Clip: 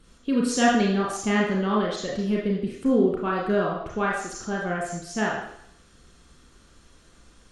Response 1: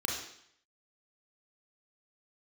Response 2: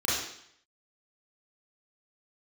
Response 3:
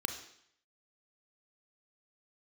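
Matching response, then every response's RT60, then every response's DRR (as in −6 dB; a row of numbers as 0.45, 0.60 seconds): 1; 0.70, 0.70, 0.70 seconds; −3.0, −10.0, 4.0 decibels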